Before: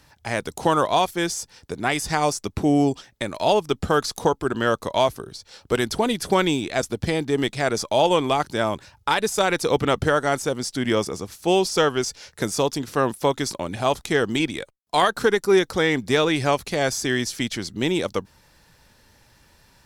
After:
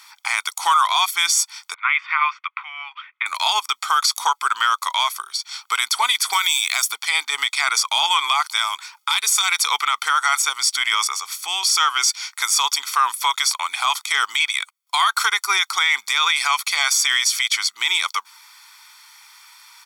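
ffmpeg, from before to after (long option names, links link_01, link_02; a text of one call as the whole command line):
ffmpeg -i in.wav -filter_complex "[0:a]asettb=1/sr,asplit=3[link_01][link_02][link_03];[link_01]atrim=end=1.744[link_04];[link_02]atrim=start=1.74:end=3.26,asetpts=PTS-STARTPTS,afade=type=in:duration=0.004:curve=qsin,afade=type=out:start_time=1.516:duration=0.004:curve=qsin,asuperpass=centerf=1700:order=8:qfactor=0.92[link_05];[link_03]atrim=start=3.256[link_06];[link_04][link_05]acrossfade=duration=0.004:curve1=hsin:curve2=qsin[link_07];[link_07][link_06]acrossfade=duration=0.004:curve1=qsin:curve2=hsin,asettb=1/sr,asplit=3[link_08][link_09][link_10];[link_08]atrim=end=6.334[link_11];[link_09]atrim=start=6.33:end=6.92,asetpts=PTS-STARTPTS,afade=type=in:duration=0.004:curve=qsin,afade=type=out:start_time=0.586:duration=0.004:curve=qsin,aemphasis=mode=production:type=50fm[link_12];[link_10]atrim=start=6.916[link_13];[link_11][link_12]acrossfade=duration=0.004:curve1=hsin:curve2=qsin[link_14];[link_14][link_13]acrossfade=duration=0.004:curve1=qsin:curve2=hsin,asettb=1/sr,asplit=3[link_15][link_16][link_17];[link_15]atrim=end=8.574[link_18];[link_16]atrim=start=8.57:end=9.67,asetpts=PTS-STARTPTS,afade=type=in:duration=0.004:curve=qsin,afade=type=out:start_time=1.096:duration=0.004:curve=qsin,acrossover=split=320|3000[link_19][link_20][link_21];[link_20]acompressor=threshold=-27dB:ratio=6:attack=3.2:release=140:knee=2.83:detection=peak[link_22];[link_19][link_22][link_21]amix=inputs=3:normalize=0[link_23];[link_17]atrim=start=9.666[link_24];[link_18][link_23]acrossfade=duration=0.004:curve1=hsin:curve2=qsin[link_25];[link_25][link_24]acrossfade=duration=0.004:curve1=qsin:curve2=hsin,asettb=1/sr,asplit=3[link_26][link_27][link_28];[link_26]atrim=end=11.144[link_29];[link_27]atrim=start=11.14:end=11.63,asetpts=PTS-STARTPTS,afade=type=in:duration=0.004:curve=qsin,afade=type=out:start_time=0.486:duration=0.004:curve=qsin,acompressor=threshold=-27dB:ratio=2:attack=3.2:release=140:knee=1:detection=peak[link_30];[link_28]atrim=start=11.626[link_31];[link_29][link_30]acrossfade=duration=0.004:curve1=hsin:curve2=qsin[link_32];[link_32][link_31]acrossfade=duration=0.004:curve1=qsin:curve2=hsin,highpass=frequency=1100:width=0.5412,highpass=frequency=1100:width=1.3066,aecho=1:1:0.9:0.8,alimiter=level_in=17.5dB:limit=-1dB:release=50:level=0:latency=1,volume=-6.5dB" out.wav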